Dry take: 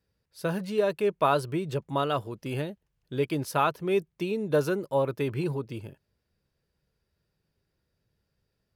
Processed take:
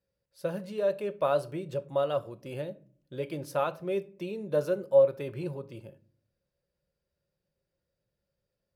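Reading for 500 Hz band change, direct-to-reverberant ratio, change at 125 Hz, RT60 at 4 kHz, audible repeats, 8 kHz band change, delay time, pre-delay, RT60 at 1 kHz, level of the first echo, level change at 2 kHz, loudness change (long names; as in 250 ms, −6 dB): 0.0 dB, 10.0 dB, −7.0 dB, 0.25 s, no echo audible, can't be measured, no echo audible, 6 ms, 0.40 s, no echo audible, −8.5 dB, −2.0 dB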